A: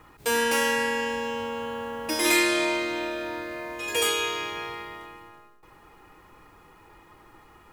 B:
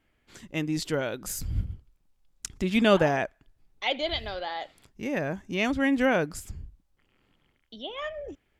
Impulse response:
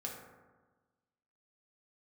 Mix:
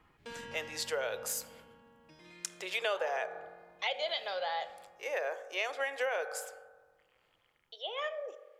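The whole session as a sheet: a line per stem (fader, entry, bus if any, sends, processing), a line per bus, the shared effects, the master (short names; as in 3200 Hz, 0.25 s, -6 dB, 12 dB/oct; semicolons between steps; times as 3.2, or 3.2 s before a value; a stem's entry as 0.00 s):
-14.0 dB, 0.00 s, no send, octaver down 1 oct, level +2 dB; compressor 2:1, threshold -28 dBFS, peak gain reduction 6.5 dB; Chebyshev low-pass 3800 Hz, order 2; auto duck -14 dB, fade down 1.95 s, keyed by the second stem
-3.0 dB, 0.00 s, send -7.5 dB, steep high-pass 450 Hz 48 dB/oct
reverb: on, RT60 1.3 s, pre-delay 3 ms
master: compressor 6:1, threshold -30 dBFS, peak gain reduction 11.5 dB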